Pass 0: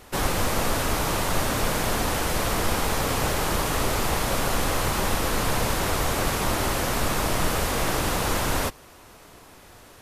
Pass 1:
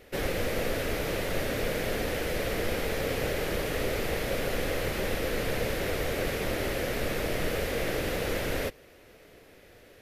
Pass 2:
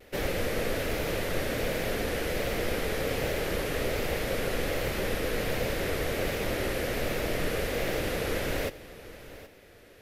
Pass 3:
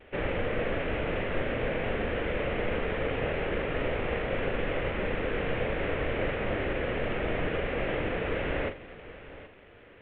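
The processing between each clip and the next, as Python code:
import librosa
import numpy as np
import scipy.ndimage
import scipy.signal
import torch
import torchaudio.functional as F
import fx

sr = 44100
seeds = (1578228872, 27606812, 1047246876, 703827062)

y1 = fx.graphic_eq(x, sr, hz=(500, 1000, 2000, 8000), db=(10, -12, 7, -7))
y1 = y1 * librosa.db_to_amplitude(-7.0)
y2 = fx.vibrato(y1, sr, rate_hz=1.3, depth_cents=47.0)
y2 = y2 + 10.0 ** (-16.5 / 20.0) * np.pad(y2, (int(774 * sr / 1000.0), 0))[:len(y2)]
y3 = fx.cvsd(y2, sr, bps=16000)
y3 = fx.doubler(y3, sr, ms=41.0, db=-8.5)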